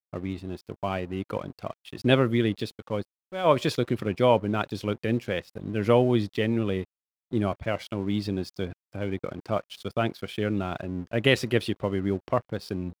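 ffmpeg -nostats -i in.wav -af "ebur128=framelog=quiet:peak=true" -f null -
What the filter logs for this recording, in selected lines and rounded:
Integrated loudness:
  I:         -27.6 LUFS
  Threshold: -37.8 LUFS
Loudness range:
  LRA:         5.5 LU
  Threshold: -47.6 LUFS
  LRA low:   -31.0 LUFS
  LRA high:  -25.6 LUFS
True peak:
  Peak:       -5.9 dBFS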